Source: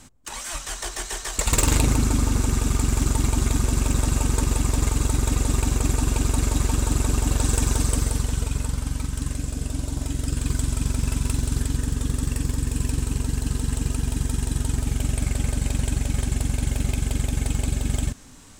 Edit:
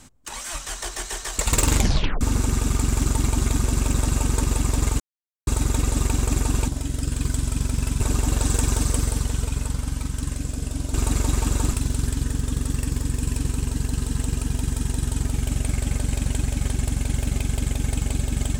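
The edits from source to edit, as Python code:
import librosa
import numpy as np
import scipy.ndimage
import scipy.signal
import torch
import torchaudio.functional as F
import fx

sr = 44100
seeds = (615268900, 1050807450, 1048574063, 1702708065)

y = fx.edit(x, sr, fx.tape_stop(start_s=1.76, length_s=0.45),
    fx.insert_silence(at_s=5.0, length_s=0.47),
    fx.swap(start_s=6.21, length_s=0.79, other_s=9.93, other_length_s=1.33), tone=tone)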